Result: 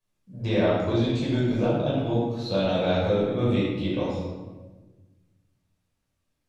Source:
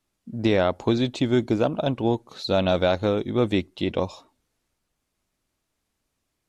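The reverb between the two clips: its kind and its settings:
rectangular room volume 800 cubic metres, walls mixed, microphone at 5.5 metres
level −13.5 dB

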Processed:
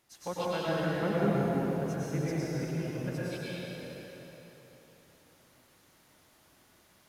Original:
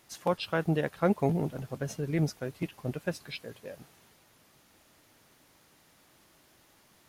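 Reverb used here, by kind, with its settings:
dense smooth reverb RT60 3.5 s, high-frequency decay 0.85×, pre-delay 90 ms, DRR −8.5 dB
level −9.5 dB

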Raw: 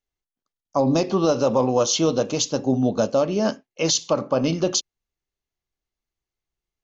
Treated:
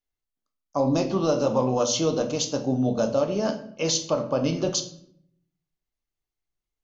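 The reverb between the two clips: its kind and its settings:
rectangular room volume 120 cubic metres, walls mixed, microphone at 0.43 metres
level −4.5 dB

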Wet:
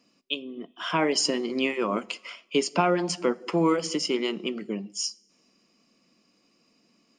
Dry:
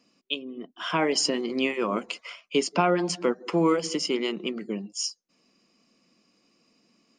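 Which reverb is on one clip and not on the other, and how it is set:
coupled-rooms reverb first 0.4 s, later 1.9 s, from −19 dB, DRR 17.5 dB

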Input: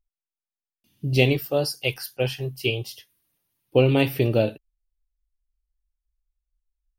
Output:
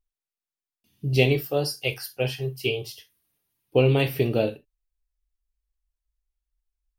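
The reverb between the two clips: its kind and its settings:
reverb whose tail is shaped and stops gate 90 ms falling, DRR 7 dB
level −2 dB

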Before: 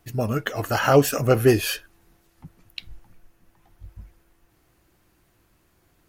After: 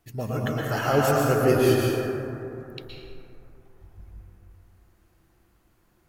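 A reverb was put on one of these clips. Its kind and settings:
dense smooth reverb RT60 3 s, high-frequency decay 0.3×, pre-delay 105 ms, DRR −3.5 dB
level −7 dB

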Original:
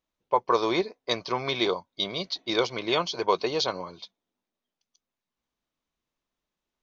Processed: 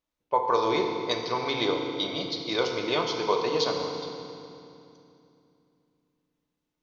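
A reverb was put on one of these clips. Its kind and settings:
feedback delay network reverb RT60 2.7 s, low-frequency decay 1.4×, high-frequency decay 0.85×, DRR 2 dB
level −2.5 dB

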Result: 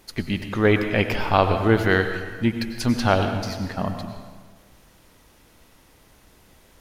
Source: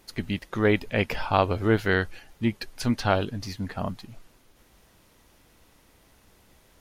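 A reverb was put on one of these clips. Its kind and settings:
dense smooth reverb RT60 1.5 s, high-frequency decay 0.7×, pre-delay 80 ms, DRR 6.5 dB
level +3.5 dB

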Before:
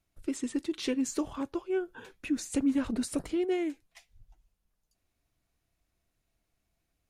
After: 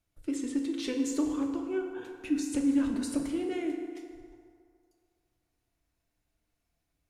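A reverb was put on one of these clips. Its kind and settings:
feedback delay network reverb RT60 2.2 s, low-frequency decay 0.75×, high-frequency decay 0.55×, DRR 2 dB
level −3 dB

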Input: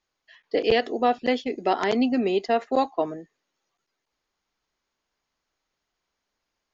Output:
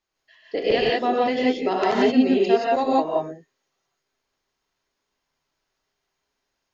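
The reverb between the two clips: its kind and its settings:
reverb whose tail is shaped and stops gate 200 ms rising, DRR −4.5 dB
level −3 dB

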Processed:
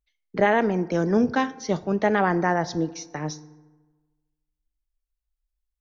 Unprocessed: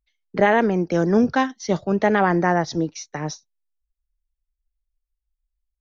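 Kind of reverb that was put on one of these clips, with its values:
feedback delay network reverb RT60 1.3 s, low-frequency decay 1.05×, high-frequency decay 0.5×, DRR 15.5 dB
level −3 dB

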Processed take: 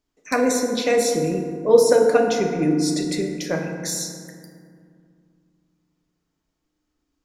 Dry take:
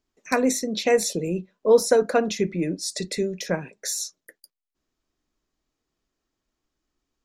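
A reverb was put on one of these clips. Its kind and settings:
feedback delay network reverb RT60 2.2 s, low-frequency decay 1.45×, high-frequency decay 0.4×, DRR 1.5 dB

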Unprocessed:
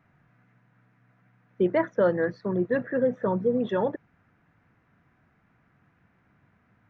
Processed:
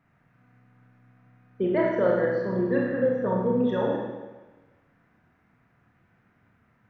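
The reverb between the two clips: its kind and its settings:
four-comb reverb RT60 1.2 s, combs from 25 ms, DRR −2.5 dB
level −3.5 dB

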